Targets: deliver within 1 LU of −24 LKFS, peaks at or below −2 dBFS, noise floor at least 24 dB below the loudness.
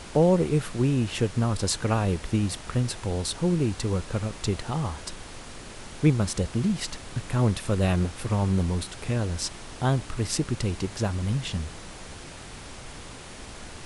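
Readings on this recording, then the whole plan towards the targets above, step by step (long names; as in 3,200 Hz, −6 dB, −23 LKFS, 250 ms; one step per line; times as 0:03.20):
background noise floor −42 dBFS; target noise floor −51 dBFS; integrated loudness −27.0 LKFS; sample peak −9.0 dBFS; target loudness −24.0 LKFS
→ noise reduction from a noise print 9 dB
level +3 dB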